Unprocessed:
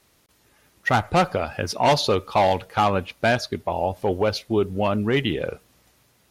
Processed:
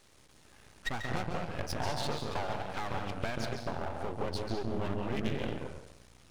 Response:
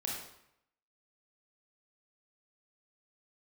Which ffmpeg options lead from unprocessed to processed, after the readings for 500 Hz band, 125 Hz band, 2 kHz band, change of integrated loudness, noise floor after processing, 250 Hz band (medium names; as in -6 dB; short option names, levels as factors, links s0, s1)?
-15.5 dB, -10.5 dB, -13.0 dB, -14.0 dB, -60 dBFS, -11.5 dB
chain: -filter_complex "[0:a]aresample=22050,aresample=44100,acompressor=threshold=0.0224:ratio=8,asplit=2[s0][s1];[1:a]atrim=start_sample=2205,lowshelf=f=220:g=11.5,adelay=139[s2];[s1][s2]afir=irnorm=-1:irlink=0,volume=0.473[s3];[s0][s3]amix=inputs=2:normalize=0,aeval=exprs='max(val(0),0)':c=same,volume=1.41"